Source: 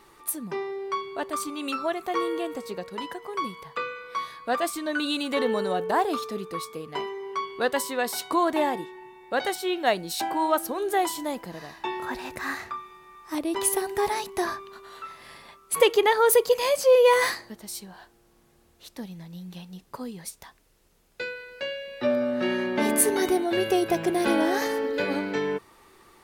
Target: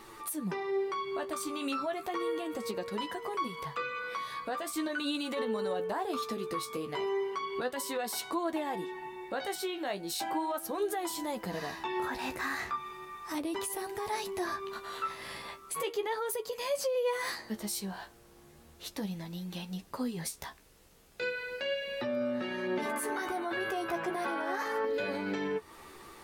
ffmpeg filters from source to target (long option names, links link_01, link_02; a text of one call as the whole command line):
ffmpeg -i in.wav -filter_complex "[0:a]asettb=1/sr,asplit=3[link_01][link_02][link_03];[link_01]atrim=end=22.854[link_04];[link_02]atrim=start=22.85:end=24.85,asetpts=PTS-STARTPTS,afade=type=in:duration=0.004:curve=qsin,afade=type=out:start_time=1.996:duration=0.004:curve=qsin,equalizer=frequency=1200:width_type=o:width=1.4:gain=15[link_05];[link_03]atrim=start=24.846[link_06];[link_04][link_05]acrossfade=duration=0.004:curve1=hsin:curve2=qsin[link_07];[link_07][link_06]acrossfade=duration=0.004:curve1=qsin:curve2=hsin,acompressor=threshold=-35dB:ratio=4,alimiter=level_in=6dB:limit=-24dB:level=0:latency=1:release=24,volume=-6dB,flanger=delay=8.8:depth=6.8:regen=31:speed=0.36:shape=sinusoidal,volume=8dB" out.wav